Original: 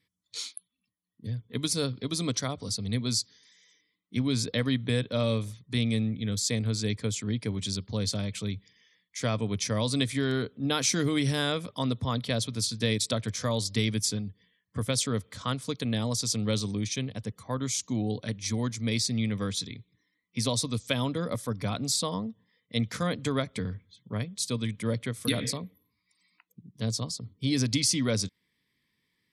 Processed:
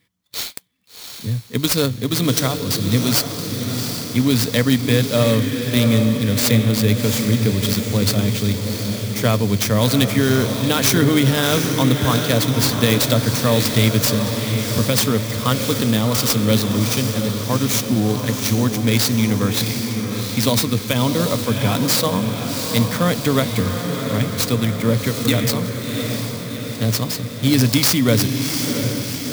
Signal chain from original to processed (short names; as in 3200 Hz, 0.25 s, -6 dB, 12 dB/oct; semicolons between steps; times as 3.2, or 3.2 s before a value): diffused feedback echo 0.722 s, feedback 62%, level -6 dB; maximiser +14 dB; clock jitter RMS 0.028 ms; gain -3 dB